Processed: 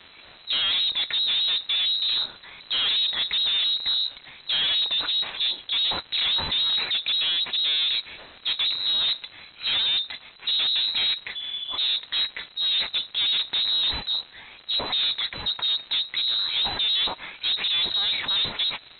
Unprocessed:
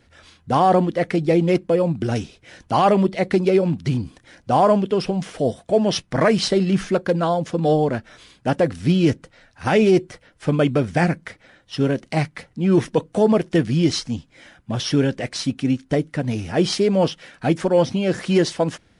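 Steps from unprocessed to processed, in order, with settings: tracing distortion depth 0.059 ms; transient shaper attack -1 dB, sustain +6 dB; spectral repair 11.38–11.79, 480–1200 Hz after; crackle 350/s -31 dBFS; overloaded stage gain 22 dB; air absorption 80 m; inverted band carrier 4000 Hz

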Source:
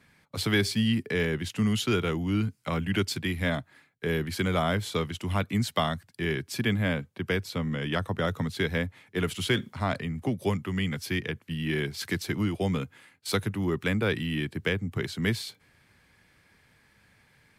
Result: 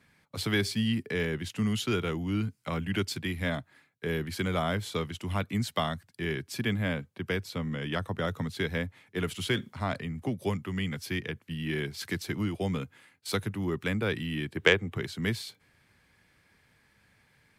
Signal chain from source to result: spectral gain 14.56–14.96, 310–3900 Hz +9 dB; added harmonics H 3 -20 dB, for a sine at -3 dBFS

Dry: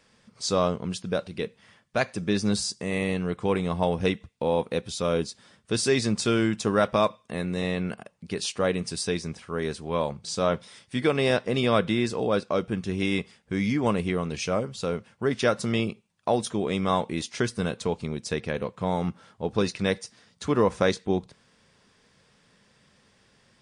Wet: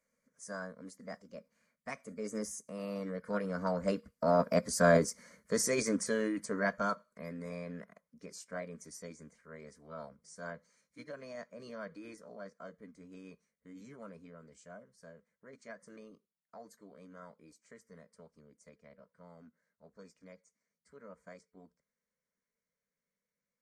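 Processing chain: Doppler pass-by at 4.93, 15 m/s, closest 7 m; fixed phaser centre 530 Hz, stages 8; formant shift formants +4 st; gain +3 dB

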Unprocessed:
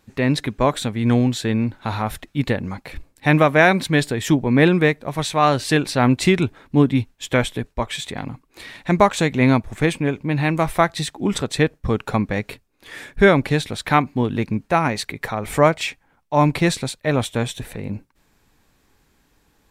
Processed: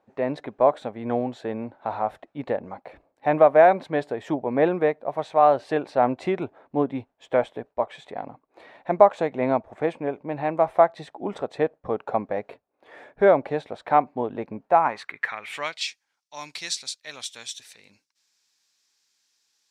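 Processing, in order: band-pass sweep 660 Hz -> 5400 Hz, 14.67–15.92; gain +3.5 dB

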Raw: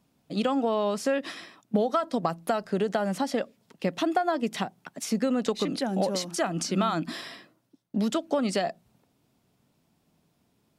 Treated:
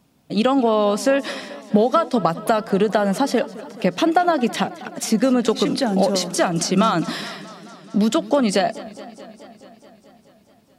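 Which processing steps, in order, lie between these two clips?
warbling echo 0.214 s, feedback 73%, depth 116 cents, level -18.5 dB; gain +8.5 dB

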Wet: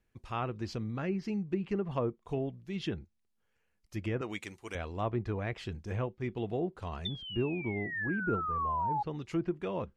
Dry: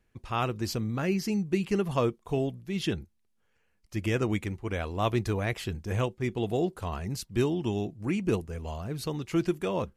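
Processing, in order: 4.21–4.75 RIAA curve recording; 7.05–9.03 painted sound fall 820–3600 Hz -25 dBFS; treble ducked by the level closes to 1100 Hz, closed at -21.5 dBFS; gain -5.5 dB

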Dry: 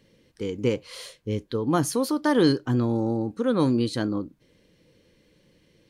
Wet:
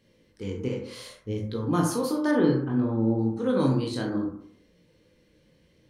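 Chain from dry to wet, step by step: 0.65–1.36 compressor, threshold -25 dBFS, peak gain reduction 7.5 dB; chorus 0.63 Hz, delay 17 ms, depth 7.1 ms; 2.31–3.19 air absorption 380 m; reverb RT60 0.65 s, pre-delay 28 ms, DRR 2 dB; gain -1 dB

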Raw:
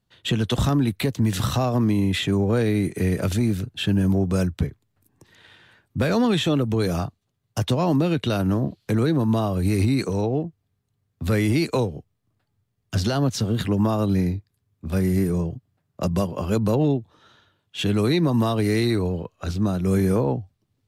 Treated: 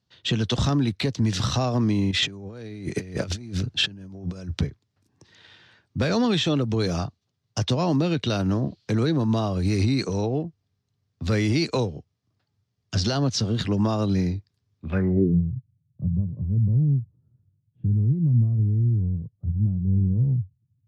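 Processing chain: HPF 64 Hz 12 dB/oct; low shelf 96 Hz +4 dB; 2.11–4.61 negative-ratio compressor -27 dBFS, ratio -0.5; low-pass sweep 5400 Hz -> 130 Hz, 14.78–15.42; gain -2.5 dB

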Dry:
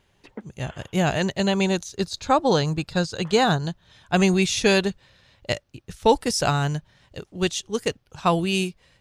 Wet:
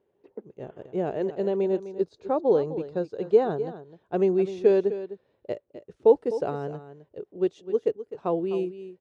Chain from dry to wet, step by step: band-pass 420 Hz, Q 3.2; on a send: echo 0.255 s -13 dB; on the sum: gain +3.5 dB

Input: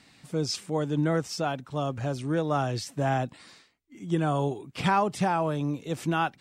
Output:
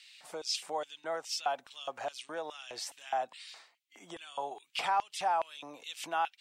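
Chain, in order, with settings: compressor 5:1, threshold -31 dBFS, peak gain reduction 11.5 dB; LFO high-pass square 2.4 Hz 740–2900 Hz

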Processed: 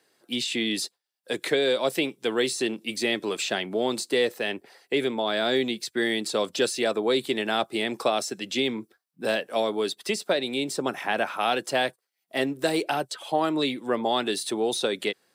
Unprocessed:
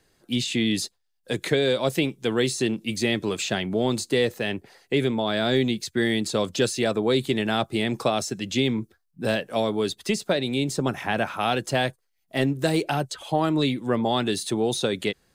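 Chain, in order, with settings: HPF 310 Hz 12 dB/oct; notch 6600 Hz, Q 11

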